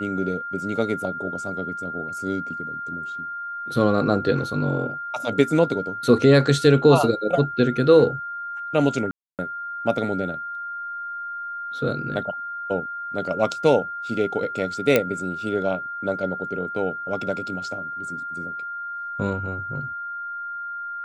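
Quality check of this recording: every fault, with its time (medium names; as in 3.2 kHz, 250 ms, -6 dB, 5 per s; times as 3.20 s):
whine 1.4 kHz -29 dBFS
9.11–9.39 s: dropout 278 ms
14.96 s: pop -4 dBFS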